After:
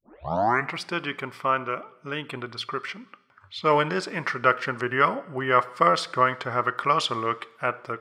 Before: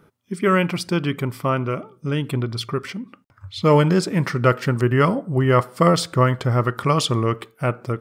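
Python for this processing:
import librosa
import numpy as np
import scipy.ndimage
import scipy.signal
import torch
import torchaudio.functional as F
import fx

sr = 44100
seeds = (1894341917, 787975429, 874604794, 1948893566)

y = fx.tape_start_head(x, sr, length_s=0.79)
y = fx.bandpass_q(y, sr, hz=1600.0, q=0.74)
y = fx.rev_double_slope(y, sr, seeds[0], early_s=0.92, late_s=2.9, knee_db=-18, drr_db=19.0)
y = F.gain(torch.from_numpy(y), 1.5).numpy()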